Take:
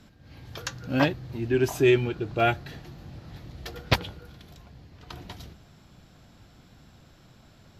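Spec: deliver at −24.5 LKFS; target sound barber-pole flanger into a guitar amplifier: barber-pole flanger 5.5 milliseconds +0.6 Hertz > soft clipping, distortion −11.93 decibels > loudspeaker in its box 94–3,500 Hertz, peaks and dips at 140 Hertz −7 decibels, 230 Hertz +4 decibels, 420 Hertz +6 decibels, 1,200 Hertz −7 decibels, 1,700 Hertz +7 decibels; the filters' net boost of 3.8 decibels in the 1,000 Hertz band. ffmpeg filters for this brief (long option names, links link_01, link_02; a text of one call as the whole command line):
ffmpeg -i in.wav -filter_complex "[0:a]equalizer=frequency=1000:width_type=o:gain=7,asplit=2[link_01][link_02];[link_02]adelay=5.5,afreqshift=0.6[link_03];[link_01][link_03]amix=inputs=2:normalize=1,asoftclip=threshold=-19dB,highpass=94,equalizer=frequency=140:width_type=q:width=4:gain=-7,equalizer=frequency=230:width_type=q:width=4:gain=4,equalizer=frequency=420:width_type=q:width=4:gain=6,equalizer=frequency=1200:width_type=q:width=4:gain=-7,equalizer=frequency=1700:width_type=q:width=4:gain=7,lowpass=frequency=3500:width=0.5412,lowpass=frequency=3500:width=1.3066,volume=3.5dB" out.wav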